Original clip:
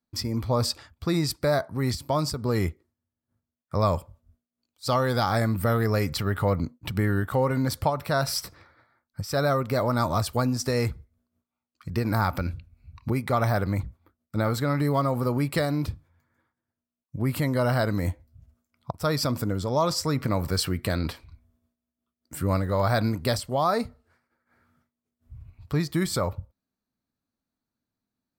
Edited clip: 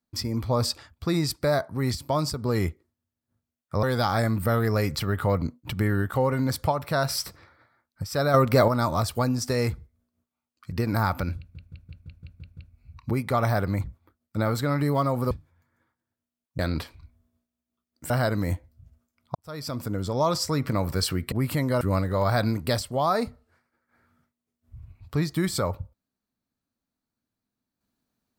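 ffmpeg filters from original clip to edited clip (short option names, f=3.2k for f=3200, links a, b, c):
-filter_complex "[0:a]asplit=17[a][b][c][d][e][f][g][h][i][j][k][l][m][n][o][p][q];[a]atrim=end=3.832[r];[b]atrim=start=5.008:end=9.522[s];[c]atrim=start=9.518:end=9.862,asetpts=PTS-STARTPTS,volume=6.5dB[t];[d]atrim=start=9.858:end=12.732[u];[e]atrim=start=12.558:end=12.732[v];[f]atrim=start=12.558:end=12.732[w];[g]atrim=start=12.558:end=12.732[x];[h]atrim=start=12.558:end=12.732[y];[i]atrim=start=12.558:end=12.732[z];[j]atrim=start=12.558:end=12.732[aa];[k]atrim=start=12.558:end=15.302[ab];[l]atrim=start=15.888:end=17.172[ac];[m]atrim=start=20.878:end=22.392[ad];[n]atrim=start=17.658:end=18.91,asetpts=PTS-STARTPTS,afade=t=out:st=1.248:d=0.004:c=hsin[ae];[o]atrim=start=18.91:end=20.882,asetpts=PTS-STARTPTS,afade=t=in:d=0.74[af];[p]atrim=start=17.168:end=17.662[ag];[q]atrim=start=22.388[ah];[r][s]acrossfade=d=0.004:c1=hsin:c2=hsin[ai];[ai][t]acrossfade=d=0.004:c1=hsin:c2=hsin[aj];[aj][u]acrossfade=d=0.004:c1=hsin:c2=hsin[ak];[ak][v]acrossfade=d=0.004:c1=hsin:c2=hsin[al];[al][w]acrossfade=d=0.004:c1=hsin:c2=hsin[am];[am][x]acrossfade=d=0.004:c1=hsin:c2=hsin[an];[an][y]acrossfade=d=0.004:c1=hsin:c2=hsin[ao];[ao][z]acrossfade=d=0.004:c1=hsin:c2=hsin[ap];[ap][aa]acrossfade=d=0.004:c1=hsin:c2=hsin[aq];[aq][ab]acrossfade=d=0.004:c1=hsin:c2=hsin[ar];[ar][ac]acrossfade=d=0.004:c1=hsin:c2=hsin[as];[as][ad]acrossfade=d=0.004:c1=hsin:c2=hsin[at];[ae][af]concat=n=2:v=0:a=1[au];[at][au]acrossfade=d=0.004:c1=hsin:c2=hsin[av];[av][ag]acrossfade=d=0.004:c1=hsin:c2=hsin[aw];[aw][ah]acrossfade=d=0.004:c1=hsin:c2=hsin"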